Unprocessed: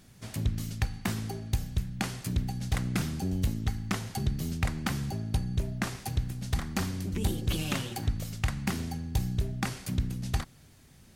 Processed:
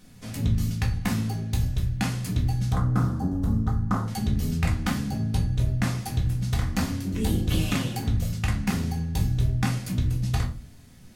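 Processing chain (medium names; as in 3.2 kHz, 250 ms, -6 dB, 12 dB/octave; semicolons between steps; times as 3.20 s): 2.72–4.08 s: resonant high shelf 1.7 kHz -11.5 dB, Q 3; reverberation RT60 0.35 s, pre-delay 4 ms, DRR -1 dB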